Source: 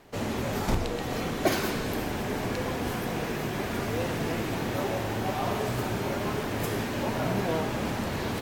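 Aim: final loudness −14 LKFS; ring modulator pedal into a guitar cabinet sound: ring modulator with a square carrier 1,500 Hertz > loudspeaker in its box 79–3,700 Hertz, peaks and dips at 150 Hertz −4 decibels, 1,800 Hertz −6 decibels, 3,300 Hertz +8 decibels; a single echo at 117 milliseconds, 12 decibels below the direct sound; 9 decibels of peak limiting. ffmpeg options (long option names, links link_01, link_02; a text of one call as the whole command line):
ffmpeg -i in.wav -af "alimiter=limit=-21dB:level=0:latency=1,aecho=1:1:117:0.251,aeval=exprs='val(0)*sgn(sin(2*PI*1500*n/s))':channel_layout=same,highpass=79,equalizer=frequency=150:width_type=q:width=4:gain=-4,equalizer=frequency=1800:width_type=q:width=4:gain=-6,equalizer=frequency=3300:width_type=q:width=4:gain=8,lowpass=frequency=3700:width=0.5412,lowpass=frequency=3700:width=1.3066,volume=17dB" out.wav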